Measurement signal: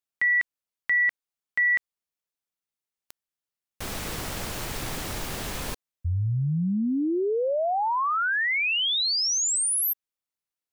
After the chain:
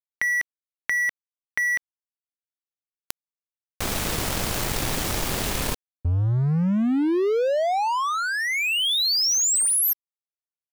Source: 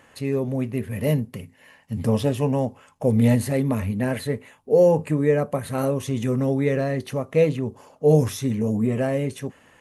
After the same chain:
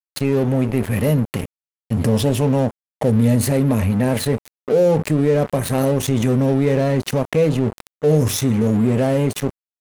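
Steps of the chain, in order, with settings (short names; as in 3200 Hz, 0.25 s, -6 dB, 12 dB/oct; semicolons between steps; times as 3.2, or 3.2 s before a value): dynamic EQ 1600 Hz, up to -7 dB, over -38 dBFS, Q 0.86; in parallel at +1 dB: limiter -19 dBFS; on the sum: crossover distortion -32 dBFS; fast leveller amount 50%; gain -1 dB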